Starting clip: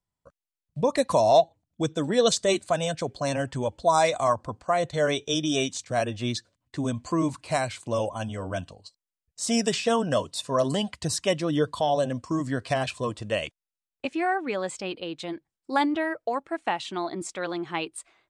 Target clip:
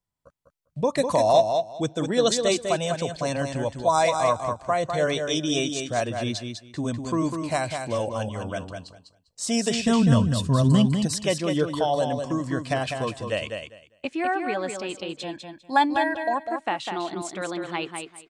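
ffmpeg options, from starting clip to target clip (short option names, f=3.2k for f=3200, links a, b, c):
-filter_complex "[0:a]asplit=3[a][b][c];[a]afade=t=out:st=9.77:d=0.02[d];[b]asubboost=boost=10.5:cutoff=160,afade=t=in:st=9.77:d=0.02,afade=t=out:st=10.85:d=0.02[e];[c]afade=t=in:st=10.85:d=0.02[f];[d][e][f]amix=inputs=3:normalize=0,asettb=1/sr,asplit=3[g][h][i];[g]atrim=end=15.174[j];[h]atrim=start=15.17:end=16.41,asetpts=PTS-STARTPTS,afade=t=in:d=0.004:c=qsin,afade=t=out:st=1.236:d=0.004:c=qsin,aecho=1:1:1.2:0.91,atrim=end_sample=54684[k];[i]atrim=start=16.406[l];[j][k]acrossfade=d=0.004:c1=hsin:c2=qsin[m];[m][l]acrossfade=d=0.004:c1=qsin:c2=hsin,aecho=1:1:200|400|600:0.501|0.0902|0.0162"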